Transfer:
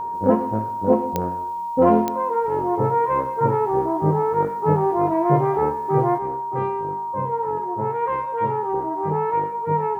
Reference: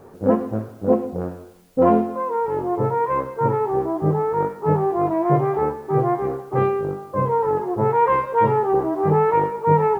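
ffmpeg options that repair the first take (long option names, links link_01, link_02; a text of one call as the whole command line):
ffmpeg -i in.wav -af "adeclick=threshold=4,bandreject=frequency=940:width=30,asetnsamples=nb_out_samples=441:pad=0,asendcmd='6.18 volume volume 6.5dB',volume=0dB" out.wav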